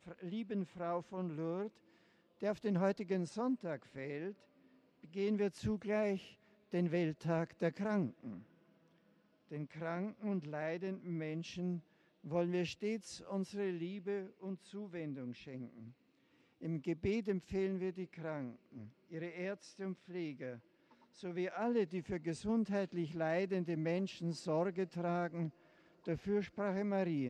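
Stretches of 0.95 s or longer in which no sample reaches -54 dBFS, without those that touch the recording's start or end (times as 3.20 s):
8.44–9.49 s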